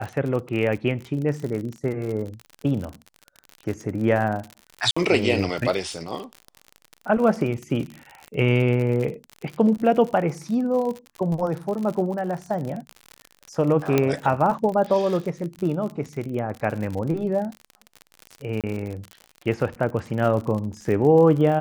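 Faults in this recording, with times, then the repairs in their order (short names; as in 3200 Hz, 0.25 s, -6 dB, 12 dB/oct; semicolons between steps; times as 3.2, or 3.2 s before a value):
crackle 56/s -29 dBFS
4.91–4.96 gap 55 ms
13.98 pop -6 dBFS
18.61–18.64 gap 27 ms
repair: de-click; interpolate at 4.91, 55 ms; interpolate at 18.61, 27 ms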